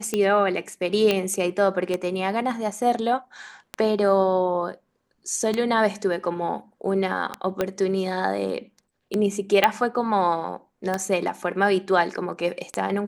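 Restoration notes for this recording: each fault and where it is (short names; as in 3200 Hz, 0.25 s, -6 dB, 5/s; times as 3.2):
tick 33 1/3 rpm -11 dBFS
1.11 pop -8 dBFS
7.61 pop -10 dBFS
9.64 pop -4 dBFS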